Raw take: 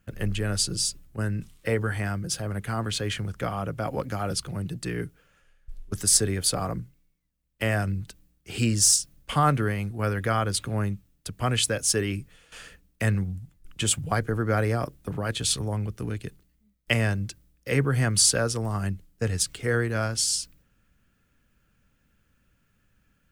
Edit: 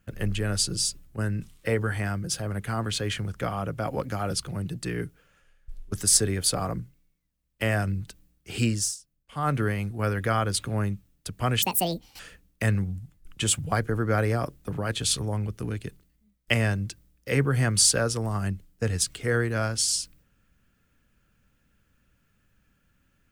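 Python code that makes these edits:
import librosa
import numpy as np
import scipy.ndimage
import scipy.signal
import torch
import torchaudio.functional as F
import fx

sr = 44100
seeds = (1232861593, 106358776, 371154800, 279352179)

y = fx.edit(x, sr, fx.fade_down_up(start_s=8.65, length_s=0.96, db=-19.5, fade_s=0.3),
    fx.speed_span(start_s=11.62, length_s=0.97, speed=1.69), tone=tone)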